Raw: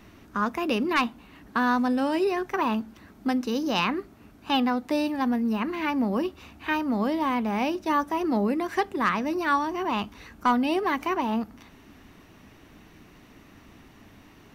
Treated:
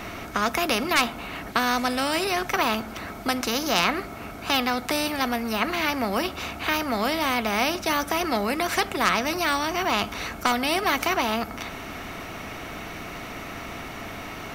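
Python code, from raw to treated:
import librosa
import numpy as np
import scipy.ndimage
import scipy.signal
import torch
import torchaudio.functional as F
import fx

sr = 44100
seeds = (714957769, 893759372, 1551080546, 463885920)

y = fx.small_body(x, sr, hz=(690.0, 1300.0, 2200.0), ring_ms=45, db=13)
y = fx.spectral_comp(y, sr, ratio=2.0)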